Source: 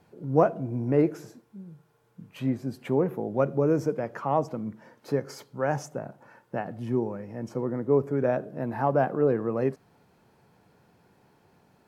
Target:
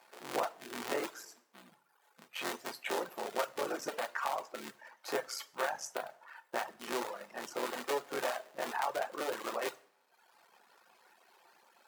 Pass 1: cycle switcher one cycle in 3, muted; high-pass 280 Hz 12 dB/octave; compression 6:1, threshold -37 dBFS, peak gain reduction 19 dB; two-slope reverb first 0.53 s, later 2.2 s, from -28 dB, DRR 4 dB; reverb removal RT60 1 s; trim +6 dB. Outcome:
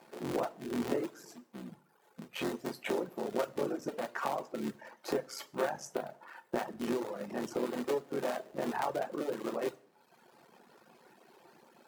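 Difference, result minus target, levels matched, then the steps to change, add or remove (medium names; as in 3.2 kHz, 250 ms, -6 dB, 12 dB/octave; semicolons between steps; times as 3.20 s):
250 Hz band +8.0 dB
change: high-pass 830 Hz 12 dB/octave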